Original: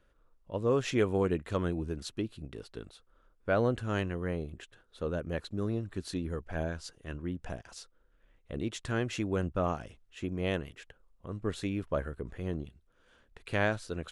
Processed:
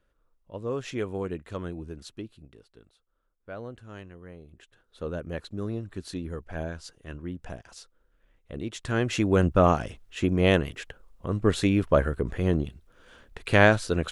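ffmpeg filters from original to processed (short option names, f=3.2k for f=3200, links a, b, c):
-af "volume=19dB,afade=t=out:st=2.14:d=0.52:silence=0.398107,afade=t=in:st=4.43:d=0.61:silence=0.251189,afade=t=in:st=8.71:d=0.8:silence=0.298538"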